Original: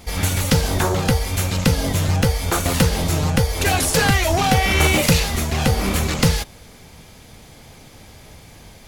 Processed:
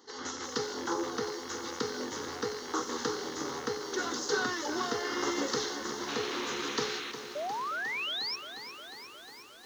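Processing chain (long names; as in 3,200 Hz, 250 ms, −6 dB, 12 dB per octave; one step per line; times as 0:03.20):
loose part that buzzes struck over −20 dBFS, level −13 dBFS
downsampling to 16,000 Hz
wrong playback speed 48 kHz file played as 44.1 kHz
phaser with its sweep stopped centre 650 Hz, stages 6
sound drawn into the spectrogram noise, 0:06.08–0:07.12, 1,100–4,300 Hz −32 dBFS
high-pass filter 190 Hz 24 dB per octave
sound drawn into the spectrogram rise, 0:07.35–0:08.36, 560–5,700 Hz −26 dBFS
feedback echo at a low word length 357 ms, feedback 80%, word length 7 bits, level −11 dB
level −9 dB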